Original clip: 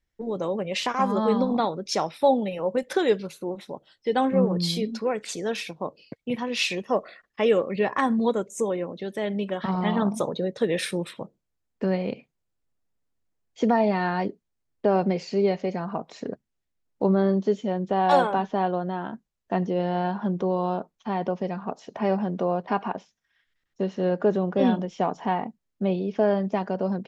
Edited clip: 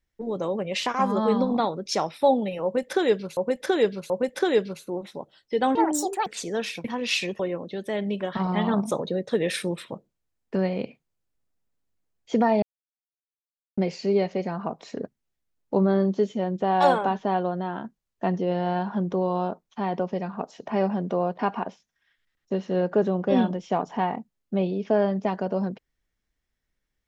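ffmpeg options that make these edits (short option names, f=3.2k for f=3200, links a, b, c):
-filter_complex "[0:a]asplit=9[a][b][c][d][e][f][g][h][i];[a]atrim=end=3.372[j];[b]atrim=start=2.638:end=3.372[k];[c]atrim=start=2.638:end=4.294[l];[d]atrim=start=4.29:end=5.18,asetpts=PTS-STARTPTS,asetrate=76293,aresample=44100,atrim=end_sample=22687,asetpts=PTS-STARTPTS[m];[e]atrim=start=5.176:end=5.762[n];[f]atrim=start=6.328:end=6.882[o];[g]atrim=start=8.678:end=13.91,asetpts=PTS-STARTPTS,afade=t=out:st=5.228:d=0.004:c=hsin[p];[h]atrim=start=13.91:end=15.06,asetpts=PTS-STARTPTS,volume=0[q];[i]atrim=start=15.06,asetpts=PTS-STARTPTS,afade=t=in:d=0.004:c=hsin[r];[j][k]acrossfade=d=0.004:c1=hsin:c2=hsin[s];[s][l]acrossfade=d=0.004:c1=hsin:c2=hsin[t];[t][m]acrossfade=d=0.004:c1=hsin:c2=hsin[u];[u][n]acrossfade=d=0.004:c1=hsin:c2=hsin[v];[v][o]acrossfade=d=0.004:c1=hsin:c2=hsin[w];[p][q][r]concat=n=3:v=0:a=1[x];[w][x]acrossfade=d=0.004:c1=hsin:c2=hsin"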